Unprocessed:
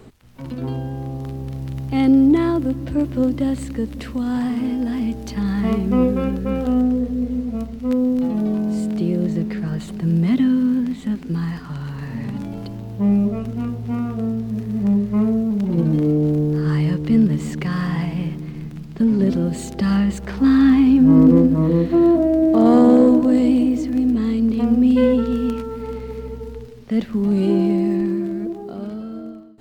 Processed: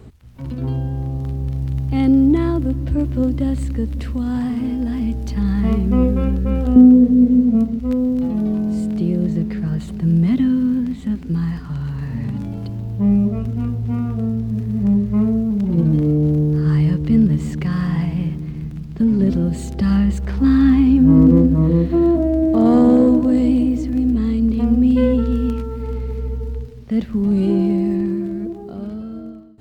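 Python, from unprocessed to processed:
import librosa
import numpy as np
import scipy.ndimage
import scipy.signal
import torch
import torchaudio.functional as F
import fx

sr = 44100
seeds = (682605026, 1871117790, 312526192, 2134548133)

y = fx.peak_eq(x, sr, hz=fx.steps((0.0, 67.0), (6.76, 220.0), (7.8, 68.0)), db=14.0, octaves=2.2)
y = F.gain(torch.from_numpy(y), -3.0).numpy()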